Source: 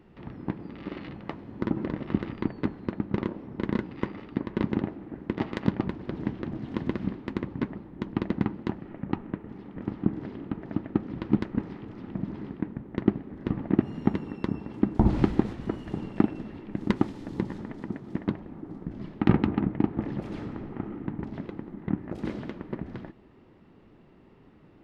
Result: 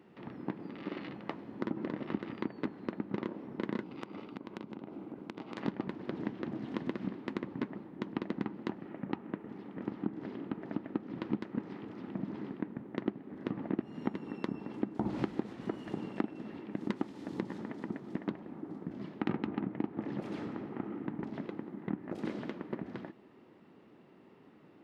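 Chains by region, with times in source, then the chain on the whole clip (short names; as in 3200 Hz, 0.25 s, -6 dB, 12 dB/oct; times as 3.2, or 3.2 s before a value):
3.83–5.58 bell 1800 Hz -12.5 dB 0.23 oct + compressor 12:1, threshold -35 dBFS
whole clip: HPF 190 Hz 12 dB/oct; compressor 3:1, threshold -30 dBFS; gain -1.5 dB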